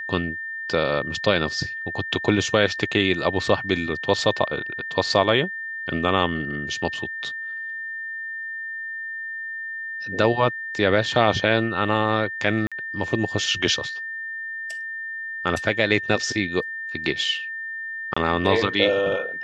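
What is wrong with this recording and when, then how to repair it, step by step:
whistle 1,800 Hz −29 dBFS
0:12.67–0:12.72: drop-out 46 ms
0:18.14–0:18.16: drop-out 25 ms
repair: notch filter 1,800 Hz, Q 30
repair the gap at 0:12.67, 46 ms
repair the gap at 0:18.14, 25 ms

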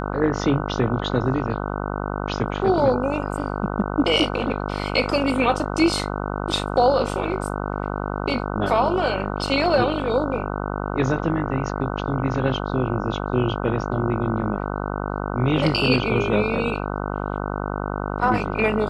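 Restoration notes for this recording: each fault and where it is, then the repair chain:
mains buzz 50 Hz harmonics 30 −27 dBFS
0:09.47: drop-out 4.9 ms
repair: hum removal 50 Hz, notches 30
repair the gap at 0:09.47, 4.9 ms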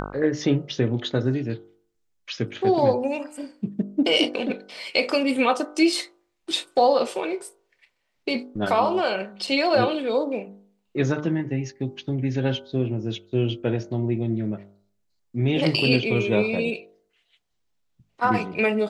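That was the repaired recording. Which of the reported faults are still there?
none of them is left

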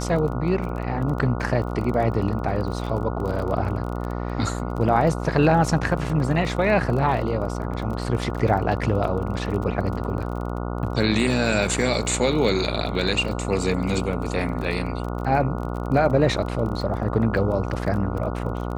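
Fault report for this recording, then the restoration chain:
mains buzz 60 Hz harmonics 24 −28 dBFS
surface crackle 28 per second −30 dBFS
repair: click removal
hum removal 60 Hz, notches 24

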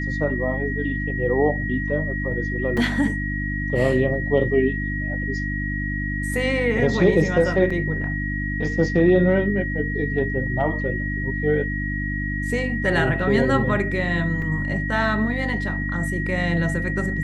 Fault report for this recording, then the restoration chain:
mains hum 50 Hz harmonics 6 −27 dBFS
whistle 1,900 Hz −28 dBFS
0:02.77: drop-out 3.8 ms
0:07.70: drop-out 4.7 ms
0:14.42: drop-out 2.8 ms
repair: notch filter 1,900 Hz, Q 30
hum removal 50 Hz, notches 6
repair the gap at 0:02.77, 3.8 ms
repair the gap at 0:07.70, 4.7 ms
repair the gap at 0:14.42, 2.8 ms

